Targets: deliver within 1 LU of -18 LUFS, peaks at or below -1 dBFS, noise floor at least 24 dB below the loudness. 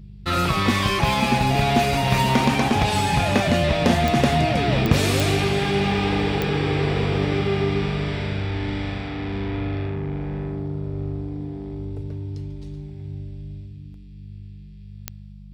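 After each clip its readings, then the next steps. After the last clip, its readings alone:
clicks 5; hum 50 Hz; harmonics up to 200 Hz; hum level -39 dBFS; loudness -22.0 LUFS; peak -2.5 dBFS; loudness target -18.0 LUFS
-> de-click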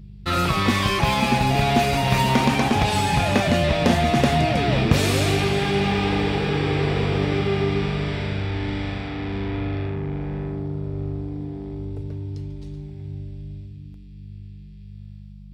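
clicks 0; hum 50 Hz; harmonics up to 200 Hz; hum level -39 dBFS
-> de-hum 50 Hz, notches 4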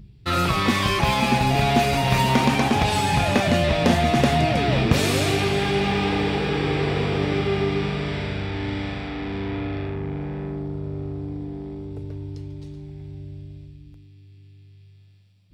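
hum none; loudness -22.0 LUFS; peak -2.0 dBFS; loudness target -18.0 LUFS
-> gain +4 dB; limiter -1 dBFS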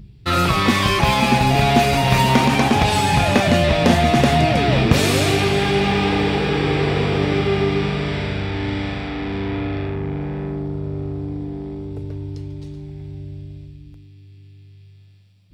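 loudness -18.0 LUFS; peak -1.0 dBFS; noise floor -45 dBFS

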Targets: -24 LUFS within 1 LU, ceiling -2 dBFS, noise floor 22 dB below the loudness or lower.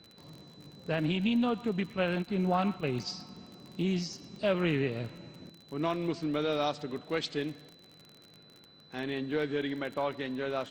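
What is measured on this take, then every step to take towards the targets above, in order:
ticks 38/s; steady tone 4000 Hz; tone level -57 dBFS; loudness -32.5 LUFS; peak -16.0 dBFS; loudness target -24.0 LUFS
-> de-click; notch 4000 Hz, Q 30; gain +8.5 dB

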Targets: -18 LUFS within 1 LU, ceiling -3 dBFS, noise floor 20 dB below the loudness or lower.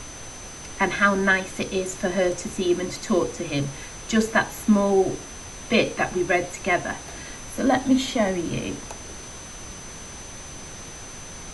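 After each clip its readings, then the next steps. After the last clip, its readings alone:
steady tone 6100 Hz; tone level -41 dBFS; noise floor -39 dBFS; noise floor target -44 dBFS; loudness -23.5 LUFS; peak -5.0 dBFS; loudness target -18.0 LUFS
-> notch 6100 Hz, Q 30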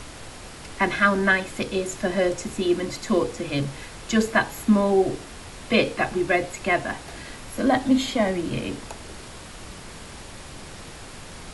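steady tone none; noise floor -41 dBFS; noise floor target -44 dBFS
-> noise print and reduce 6 dB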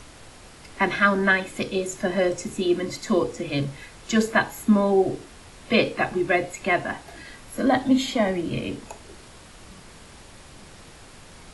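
noise floor -47 dBFS; loudness -23.5 LUFS; peak -5.0 dBFS; loudness target -18.0 LUFS
-> gain +5.5 dB; limiter -3 dBFS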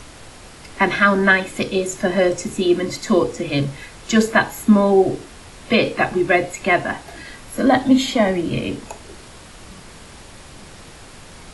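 loudness -18.0 LUFS; peak -3.0 dBFS; noise floor -41 dBFS

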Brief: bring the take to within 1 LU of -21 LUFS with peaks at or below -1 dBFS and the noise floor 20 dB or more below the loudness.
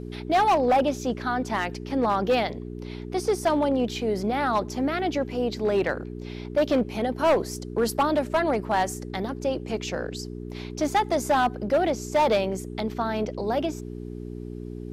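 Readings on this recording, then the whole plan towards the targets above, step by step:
clipped 1.2%; flat tops at -16.0 dBFS; hum 60 Hz; harmonics up to 420 Hz; hum level -34 dBFS; loudness -25.5 LUFS; peak -16.0 dBFS; loudness target -21.0 LUFS
-> clip repair -16 dBFS; de-hum 60 Hz, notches 7; gain +4.5 dB

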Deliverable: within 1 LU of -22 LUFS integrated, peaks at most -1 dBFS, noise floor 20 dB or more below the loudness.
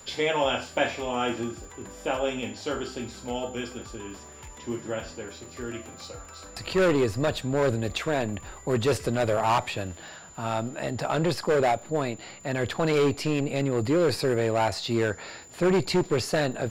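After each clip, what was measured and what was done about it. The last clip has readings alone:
ticks 57/s; steady tone 7100 Hz; tone level -48 dBFS; loudness -27.0 LUFS; peak -10.5 dBFS; loudness target -22.0 LUFS
-> de-click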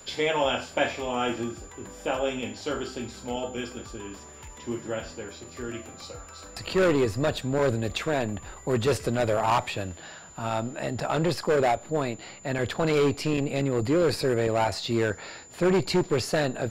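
ticks 0.30/s; steady tone 7100 Hz; tone level -48 dBFS
-> notch 7100 Hz, Q 30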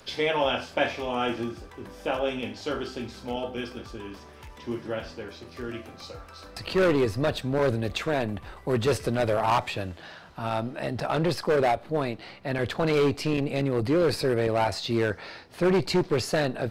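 steady tone none; loudness -27.0 LUFS; peak -11.0 dBFS; loudness target -22.0 LUFS
-> gain +5 dB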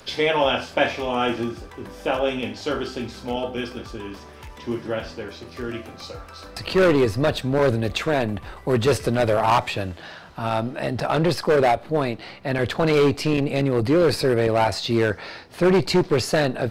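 loudness -22.0 LUFS; peak -6.0 dBFS; noise floor -43 dBFS

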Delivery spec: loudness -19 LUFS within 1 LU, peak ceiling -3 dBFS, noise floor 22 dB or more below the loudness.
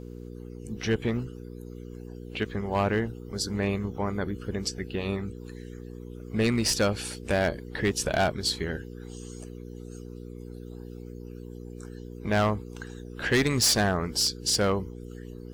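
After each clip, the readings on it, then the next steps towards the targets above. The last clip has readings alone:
clipped 0.6%; flat tops at -17.5 dBFS; hum 60 Hz; harmonics up to 480 Hz; hum level -39 dBFS; loudness -27.5 LUFS; peak -17.5 dBFS; loudness target -19.0 LUFS
-> clip repair -17.5 dBFS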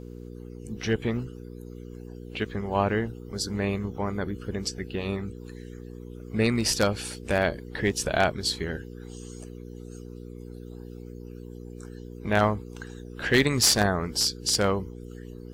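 clipped 0.0%; hum 60 Hz; harmonics up to 480 Hz; hum level -38 dBFS
-> de-hum 60 Hz, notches 8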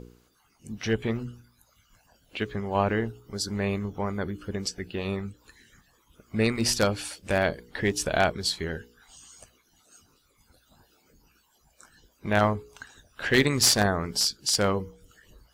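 hum none; loudness -26.5 LUFS; peak -8.0 dBFS; loudness target -19.0 LUFS
-> gain +7.5 dB; limiter -3 dBFS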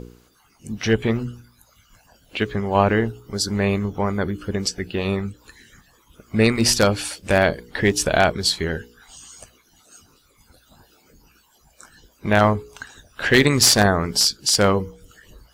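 loudness -19.5 LUFS; peak -3.0 dBFS; noise floor -59 dBFS

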